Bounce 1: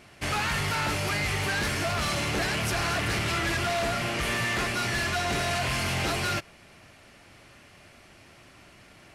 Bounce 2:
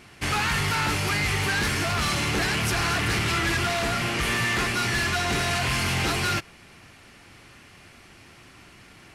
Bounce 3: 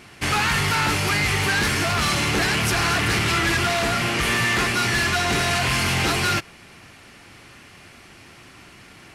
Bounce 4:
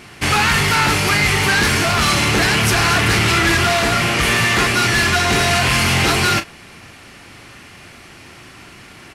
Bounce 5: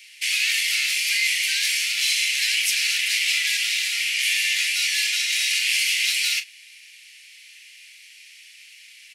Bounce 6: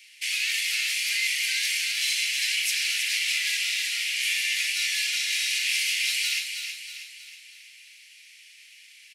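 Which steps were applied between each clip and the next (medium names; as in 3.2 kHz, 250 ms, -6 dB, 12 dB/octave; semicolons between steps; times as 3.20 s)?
peaking EQ 610 Hz -8 dB 0.35 oct; trim +3.5 dB
bass shelf 68 Hz -5 dB; trim +4 dB
doubling 36 ms -11 dB; trim +5.5 dB
steep high-pass 2.1 kHz 48 dB/octave; trim -2 dB
feedback delay 320 ms, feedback 48%, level -7 dB; trim -5 dB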